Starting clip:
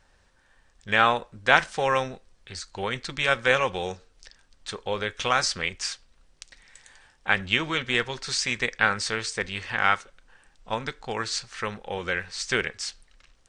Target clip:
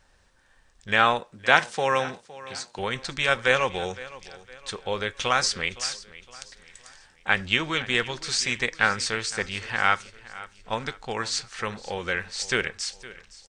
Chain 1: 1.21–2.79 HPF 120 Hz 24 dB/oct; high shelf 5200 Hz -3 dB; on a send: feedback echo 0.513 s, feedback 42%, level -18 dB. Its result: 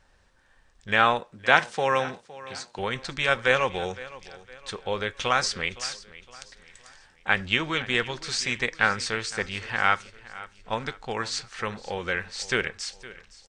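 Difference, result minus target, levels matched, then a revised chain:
8000 Hz band -3.0 dB
1.21–2.79 HPF 120 Hz 24 dB/oct; high shelf 5200 Hz +3 dB; on a send: feedback echo 0.513 s, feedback 42%, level -18 dB

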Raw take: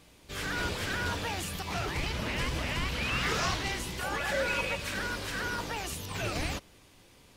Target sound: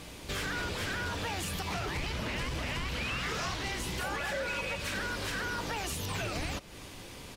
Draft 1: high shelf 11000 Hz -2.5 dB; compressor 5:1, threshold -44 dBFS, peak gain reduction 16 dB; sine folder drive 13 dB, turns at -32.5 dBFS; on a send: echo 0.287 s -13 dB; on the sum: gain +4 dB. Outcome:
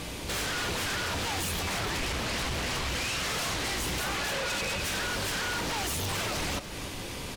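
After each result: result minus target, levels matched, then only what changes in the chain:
sine folder: distortion +20 dB; echo-to-direct +11 dB
change: sine folder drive 4 dB, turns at -32.5 dBFS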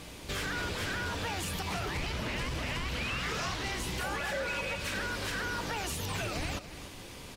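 echo-to-direct +11 dB
change: echo 0.287 s -24 dB

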